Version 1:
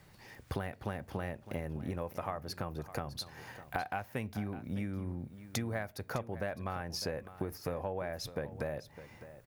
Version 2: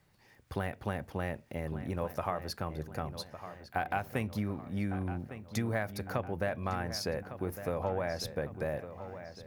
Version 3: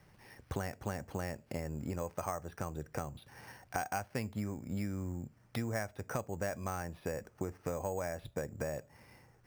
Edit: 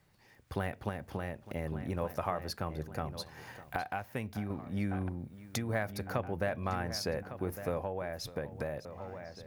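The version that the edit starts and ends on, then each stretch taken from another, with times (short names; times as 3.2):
2
0.89–1.52 from 1
3.26–4.5 from 1
5.09–5.69 from 1
7.8–8.85 from 1
not used: 3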